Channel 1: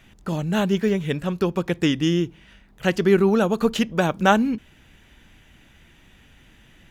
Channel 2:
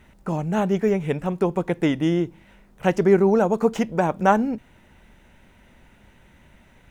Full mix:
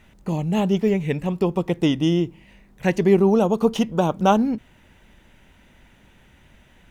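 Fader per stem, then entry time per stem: −5.5, −2.0 decibels; 0.00, 0.00 seconds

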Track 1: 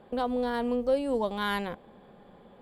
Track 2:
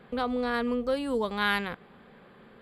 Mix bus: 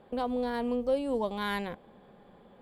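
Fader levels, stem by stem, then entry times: −2.5, −19.5 decibels; 0.00, 0.00 seconds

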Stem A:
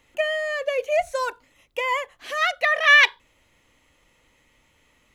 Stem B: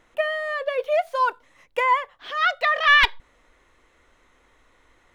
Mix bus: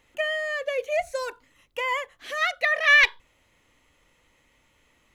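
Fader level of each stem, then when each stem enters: −2.5, −14.0 decibels; 0.00, 0.00 seconds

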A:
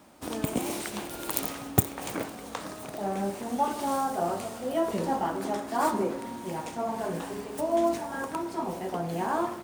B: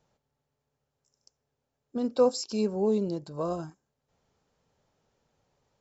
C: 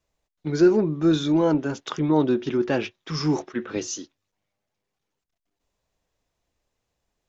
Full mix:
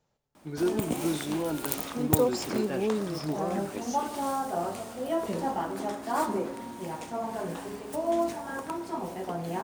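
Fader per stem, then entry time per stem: −2.0, −3.0, −11.0 decibels; 0.35, 0.00, 0.00 seconds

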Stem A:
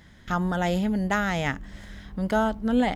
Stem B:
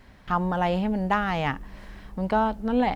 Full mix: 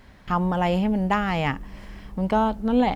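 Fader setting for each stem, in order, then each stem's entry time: −10.5, +1.5 decibels; 0.00, 0.00 seconds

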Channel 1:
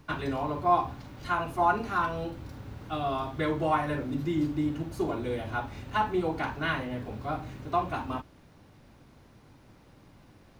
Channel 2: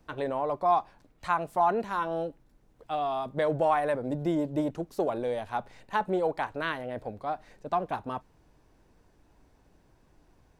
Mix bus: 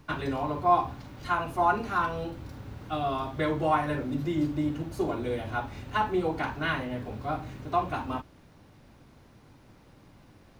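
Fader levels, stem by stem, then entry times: +0.5, −14.0 decibels; 0.00, 0.00 seconds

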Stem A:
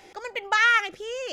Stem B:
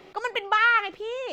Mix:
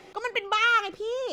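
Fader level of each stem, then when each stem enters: −4.5, −1.5 decibels; 0.00, 0.00 seconds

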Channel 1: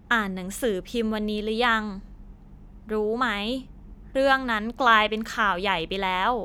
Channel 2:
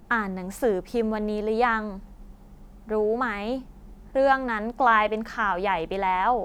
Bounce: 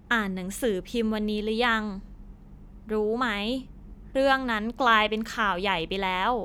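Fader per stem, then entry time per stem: −1.5, −13.5 decibels; 0.00, 0.00 seconds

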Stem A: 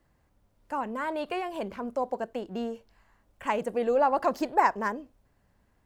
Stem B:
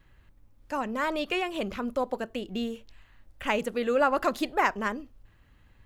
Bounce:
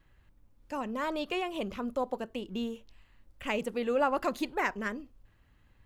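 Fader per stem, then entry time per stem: −10.5, −5.0 decibels; 0.00, 0.00 seconds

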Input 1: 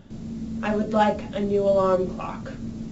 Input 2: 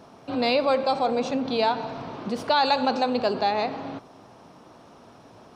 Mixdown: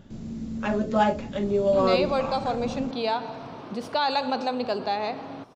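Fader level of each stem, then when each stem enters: −1.5, −3.5 decibels; 0.00, 1.45 seconds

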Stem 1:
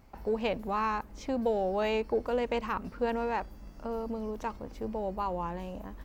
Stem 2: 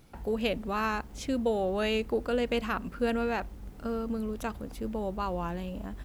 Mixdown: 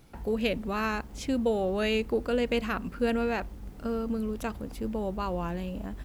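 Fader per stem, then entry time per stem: −11.0, +1.0 decibels; 0.00, 0.00 seconds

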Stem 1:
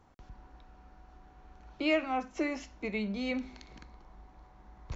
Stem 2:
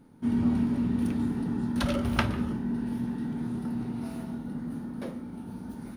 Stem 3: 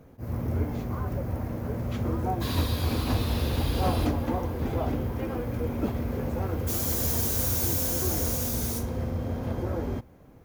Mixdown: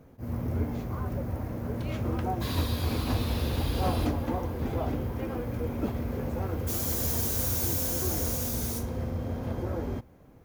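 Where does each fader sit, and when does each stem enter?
−16.0, −18.0, −2.0 decibels; 0.00, 0.00, 0.00 seconds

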